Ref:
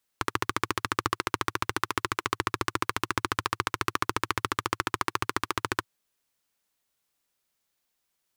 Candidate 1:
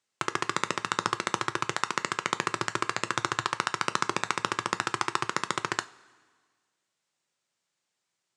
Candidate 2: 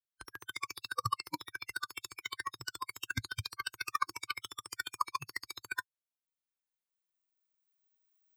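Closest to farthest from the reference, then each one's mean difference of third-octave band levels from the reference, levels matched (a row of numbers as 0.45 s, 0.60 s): 1, 2; 4.5 dB, 10.5 dB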